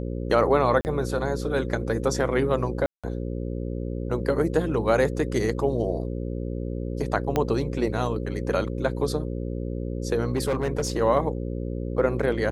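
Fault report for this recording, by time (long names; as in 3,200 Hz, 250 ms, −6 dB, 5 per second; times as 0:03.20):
mains buzz 60 Hz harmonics 9 −30 dBFS
0:00.81–0:00.85: drop-out 39 ms
0:02.86–0:03.04: drop-out 176 ms
0:07.36: click −10 dBFS
0:10.35–0:10.98: clipping −20 dBFS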